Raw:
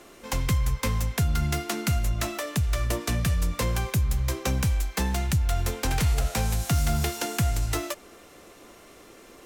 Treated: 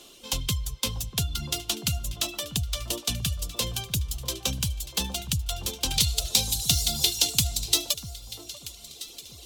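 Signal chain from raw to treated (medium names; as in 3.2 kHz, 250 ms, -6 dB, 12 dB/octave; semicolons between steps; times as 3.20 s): reverb removal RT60 1.7 s; resonant high shelf 2.5 kHz +8.5 dB, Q 3, from 5.94 s +14 dB; echo whose repeats swap between lows and highs 640 ms, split 1.3 kHz, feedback 52%, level -11 dB; trim -4.5 dB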